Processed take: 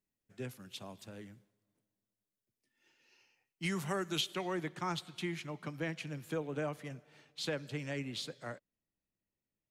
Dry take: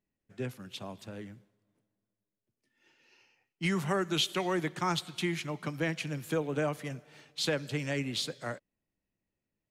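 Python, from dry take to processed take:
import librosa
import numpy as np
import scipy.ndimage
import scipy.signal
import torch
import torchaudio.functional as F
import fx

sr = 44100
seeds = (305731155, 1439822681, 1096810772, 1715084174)

y = fx.high_shelf(x, sr, hz=4700.0, db=fx.steps((0.0, 7.0), (4.2, -3.5)))
y = y * 10.0 ** (-6.0 / 20.0)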